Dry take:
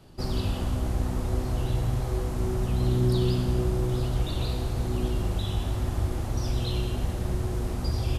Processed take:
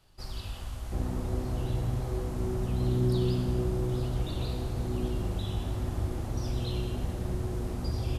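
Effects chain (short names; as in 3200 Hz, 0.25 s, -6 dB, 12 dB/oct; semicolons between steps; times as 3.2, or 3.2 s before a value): bell 250 Hz -13.5 dB 2.8 oct, from 0.92 s +3.5 dB; gain -5.5 dB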